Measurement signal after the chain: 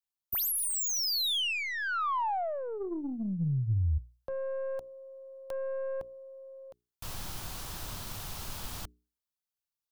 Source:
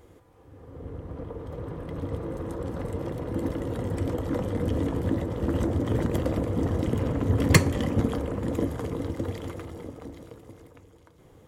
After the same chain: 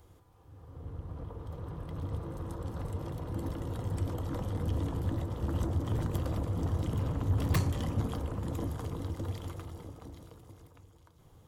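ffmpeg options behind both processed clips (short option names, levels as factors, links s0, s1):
-filter_complex "[0:a]bandreject=f=60:t=h:w=6,bandreject=f=120:t=h:w=6,bandreject=f=180:t=h:w=6,bandreject=f=240:t=h:w=6,bandreject=f=300:t=h:w=6,bandreject=f=360:t=h:w=6,bandreject=f=420:t=h:w=6,acrossover=split=340|2500[s0][s1][s2];[s2]aeval=exprs='0.0562*(abs(mod(val(0)/0.0562+3,4)-2)-1)':c=same[s3];[s0][s1][s3]amix=inputs=3:normalize=0,aeval=exprs='(tanh(8.91*val(0)+0.15)-tanh(0.15))/8.91':c=same,equalizer=f=250:t=o:w=1:g=-7,equalizer=f=500:t=o:w=1:g=-9,equalizer=f=2000:t=o:w=1:g=-9,equalizer=f=8000:t=o:w=1:g=-3"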